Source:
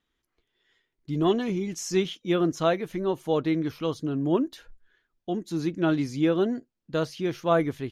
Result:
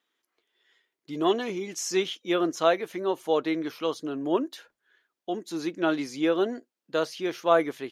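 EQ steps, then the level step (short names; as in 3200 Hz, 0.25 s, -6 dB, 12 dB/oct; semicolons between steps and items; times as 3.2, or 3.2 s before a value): HPF 390 Hz 12 dB/oct; +2.5 dB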